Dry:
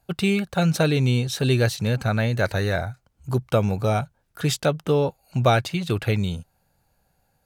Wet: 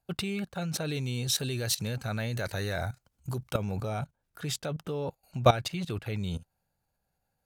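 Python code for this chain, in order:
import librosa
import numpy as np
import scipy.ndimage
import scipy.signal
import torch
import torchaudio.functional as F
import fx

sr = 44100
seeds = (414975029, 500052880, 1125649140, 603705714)

y = fx.level_steps(x, sr, step_db=16)
y = fx.high_shelf(y, sr, hz=3600.0, db=8.0, at=(0.88, 3.57))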